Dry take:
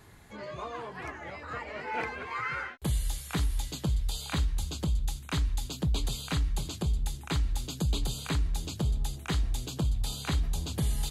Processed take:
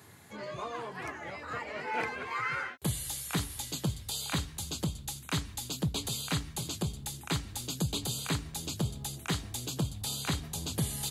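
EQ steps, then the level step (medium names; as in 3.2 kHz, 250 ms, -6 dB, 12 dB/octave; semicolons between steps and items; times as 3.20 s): high-pass 90 Hz 24 dB/octave; treble shelf 6.3 kHz +7 dB; 0.0 dB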